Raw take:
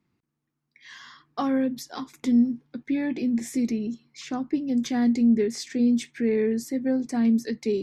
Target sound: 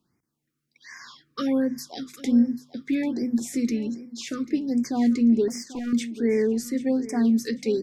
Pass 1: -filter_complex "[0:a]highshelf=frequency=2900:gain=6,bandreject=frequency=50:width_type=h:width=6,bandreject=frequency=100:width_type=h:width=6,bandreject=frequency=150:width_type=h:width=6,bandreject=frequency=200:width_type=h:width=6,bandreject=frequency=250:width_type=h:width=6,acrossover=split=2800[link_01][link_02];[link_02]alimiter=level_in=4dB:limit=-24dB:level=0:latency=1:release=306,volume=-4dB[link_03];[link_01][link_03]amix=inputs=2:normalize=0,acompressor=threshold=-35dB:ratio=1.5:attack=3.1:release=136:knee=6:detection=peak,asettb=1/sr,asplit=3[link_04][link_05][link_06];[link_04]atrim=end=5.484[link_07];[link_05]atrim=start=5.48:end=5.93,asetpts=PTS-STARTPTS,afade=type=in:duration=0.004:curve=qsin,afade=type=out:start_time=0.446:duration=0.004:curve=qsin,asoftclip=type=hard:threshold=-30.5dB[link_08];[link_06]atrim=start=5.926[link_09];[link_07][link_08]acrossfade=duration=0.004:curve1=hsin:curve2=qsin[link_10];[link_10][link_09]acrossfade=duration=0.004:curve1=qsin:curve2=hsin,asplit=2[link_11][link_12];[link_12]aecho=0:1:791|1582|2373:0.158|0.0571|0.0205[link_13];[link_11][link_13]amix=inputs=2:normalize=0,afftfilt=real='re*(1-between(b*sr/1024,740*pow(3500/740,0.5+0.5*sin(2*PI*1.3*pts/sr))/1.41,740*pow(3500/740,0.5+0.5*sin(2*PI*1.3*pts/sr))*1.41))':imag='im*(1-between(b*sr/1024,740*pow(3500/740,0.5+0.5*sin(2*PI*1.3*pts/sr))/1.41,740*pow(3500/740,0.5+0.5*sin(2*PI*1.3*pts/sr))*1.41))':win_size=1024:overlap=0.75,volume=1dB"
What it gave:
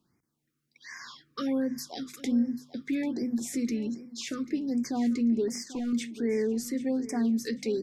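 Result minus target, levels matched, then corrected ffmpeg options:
downward compressor: peak gain reduction +7 dB
-filter_complex "[0:a]highshelf=frequency=2900:gain=6,bandreject=frequency=50:width_type=h:width=6,bandreject=frequency=100:width_type=h:width=6,bandreject=frequency=150:width_type=h:width=6,bandreject=frequency=200:width_type=h:width=6,bandreject=frequency=250:width_type=h:width=6,acrossover=split=2800[link_01][link_02];[link_02]alimiter=level_in=4dB:limit=-24dB:level=0:latency=1:release=306,volume=-4dB[link_03];[link_01][link_03]amix=inputs=2:normalize=0,asettb=1/sr,asplit=3[link_04][link_05][link_06];[link_04]atrim=end=5.484[link_07];[link_05]atrim=start=5.48:end=5.93,asetpts=PTS-STARTPTS,afade=type=in:duration=0.004:curve=qsin,afade=type=out:start_time=0.446:duration=0.004:curve=qsin,asoftclip=type=hard:threshold=-30.5dB[link_08];[link_06]atrim=start=5.926[link_09];[link_07][link_08]acrossfade=duration=0.004:curve1=hsin:curve2=qsin[link_10];[link_10][link_09]acrossfade=duration=0.004:curve1=qsin:curve2=hsin,asplit=2[link_11][link_12];[link_12]aecho=0:1:791|1582|2373:0.158|0.0571|0.0205[link_13];[link_11][link_13]amix=inputs=2:normalize=0,afftfilt=real='re*(1-between(b*sr/1024,740*pow(3500/740,0.5+0.5*sin(2*PI*1.3*pts/sr))/1.41,740*pow(3500/740,0.5+0.5*sin(2*PI*1.3*pts/sr))*1.41))':imag='im*(1-between(b*sr/1024,740*pow(3500/740,0.5+0.5*sin(2*PI*1.3*pts/sr))/1.41,740*pow(3500/740,0.5+0.5*sin(2*PI*1.3*pts/sr))*1.41))':win_size=1024:overlap=0.75,volume=1dB"

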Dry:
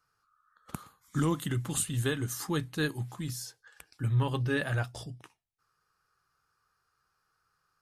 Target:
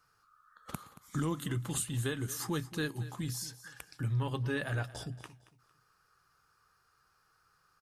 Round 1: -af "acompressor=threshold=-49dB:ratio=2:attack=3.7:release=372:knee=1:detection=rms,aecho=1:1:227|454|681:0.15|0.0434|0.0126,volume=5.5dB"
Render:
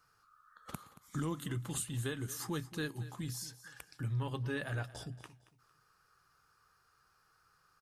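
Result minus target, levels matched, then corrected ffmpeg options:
downward compressor: peak gain reduction +3.5 dB
-af "acompressor=threshold=-42dB:ratio=2:attack=3.7:release=372:knee=1:detection=rms,aecho=1:1:227|454|681:0.15|0.0434|0.0126,volume=5.5dB"

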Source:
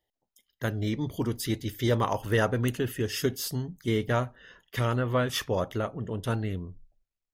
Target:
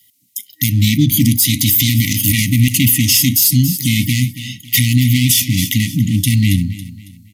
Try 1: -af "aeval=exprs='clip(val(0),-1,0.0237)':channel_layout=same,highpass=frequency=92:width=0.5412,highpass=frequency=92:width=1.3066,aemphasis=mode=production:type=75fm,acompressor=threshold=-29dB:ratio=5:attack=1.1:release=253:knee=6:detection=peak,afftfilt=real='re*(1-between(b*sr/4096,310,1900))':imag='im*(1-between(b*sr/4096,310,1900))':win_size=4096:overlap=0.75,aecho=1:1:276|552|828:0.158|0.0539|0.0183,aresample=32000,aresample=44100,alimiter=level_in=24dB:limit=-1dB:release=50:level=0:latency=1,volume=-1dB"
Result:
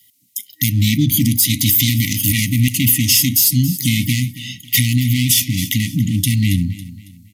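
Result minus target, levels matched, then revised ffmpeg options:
downward compressor: peak gain reduction +5.5 dB
-af "aeval=exprs='clip(val(0),-1,0.0237)':channel_layout=same,highpass=frequency=92:width=0.5412,highpass=frequency=92:width=1.3066,aemphasis=mode=production:type=75fm,acompressor=threshold=-22dB:ratio=5:attack=1.1:release=253:knee=6:detection=peak,afftfilt=real='re*(1-between(b*sr/4096,310,1900))':imag='im*(1-between(b*sr/4096,310,1900))':win_size=4096:overlap=0.75,aecho=1:1:276|552|828:0.158|0.0539|0.0183,aresample=32000,aresample=44100,alimiter=level_in=24dB:limit=-1dB:release=50:level=0:latency=1,volume=-1dB"

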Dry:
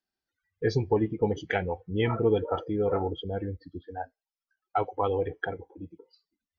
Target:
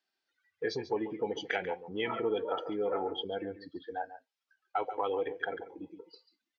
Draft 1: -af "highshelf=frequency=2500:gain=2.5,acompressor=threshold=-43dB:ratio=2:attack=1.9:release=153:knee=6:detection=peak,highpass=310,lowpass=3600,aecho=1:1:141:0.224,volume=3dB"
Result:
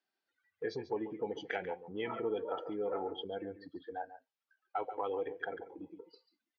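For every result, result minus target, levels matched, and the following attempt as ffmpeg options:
4,000 Hz band −3.5 dB; downward compressor: peak gain reduction +3.5 dB
-af "highshelf=frequency=2500:gain=11.5,acompressor=threshold=-43dB:ratio=2:attack=1.9:release=153:knee=6:detection=peak,highpass=310,lowpass=3600,aecho=1:1:141:0.224,volume=3dB"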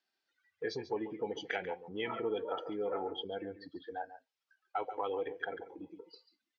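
downward compressor: peak gain reduction +4 dB
-af "highshelf=frequency=2500:gain=11.5,acompressor=threshold=-35.5dB:ratio=2:attack=1.9:release=153:knee=6:detection=peak,highpass=310,lowpass=3600,aecho=1:1:141:0.224,volume=3dB"

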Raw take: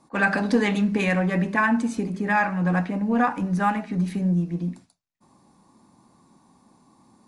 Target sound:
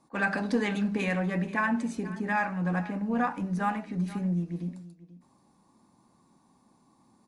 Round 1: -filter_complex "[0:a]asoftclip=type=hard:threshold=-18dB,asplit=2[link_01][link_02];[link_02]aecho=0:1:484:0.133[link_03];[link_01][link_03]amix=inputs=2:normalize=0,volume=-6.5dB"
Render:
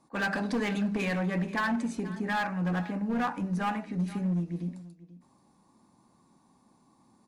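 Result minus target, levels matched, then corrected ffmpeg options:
hard clipping: distortion +36 dB
-filter_complex "[0:a]asoftclip=type=hard:threshold=-10dB,asplit=2[link_01][link_02];[link_02]aecho=0:1:484:0.133[link_03];[link_01][link_03]amix=inputs=2:normalize=0,volume=-6.5dB"

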